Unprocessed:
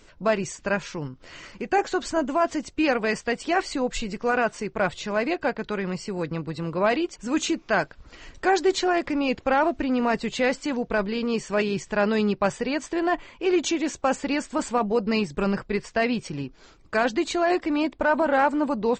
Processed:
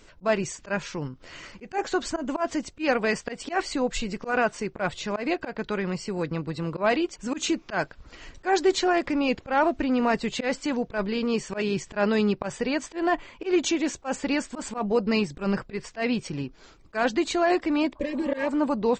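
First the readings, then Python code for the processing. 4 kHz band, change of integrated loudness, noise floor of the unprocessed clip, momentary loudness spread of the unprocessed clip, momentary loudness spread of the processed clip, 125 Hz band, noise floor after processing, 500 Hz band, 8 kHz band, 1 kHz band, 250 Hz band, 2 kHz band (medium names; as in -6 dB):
-0.5 dB, -2.0 dB, -53 dBFS, 7 LU, 8 LU, -0.5 dB, -53 dBFS, -2.0 dB, 0.0 dB, -3.0 dB, -1.0 dB, -2.5 dB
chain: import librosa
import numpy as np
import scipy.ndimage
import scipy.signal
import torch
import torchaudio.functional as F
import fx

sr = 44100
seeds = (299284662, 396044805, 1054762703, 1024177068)

y = fx.spec_repair(x, sr, seeds[0], start_s=17.98, length_s=0.47, low_hz=600.0, high_hz=1600.0, source='both')
y = fx.auto_swell(y, sr, attack_ms=111.0)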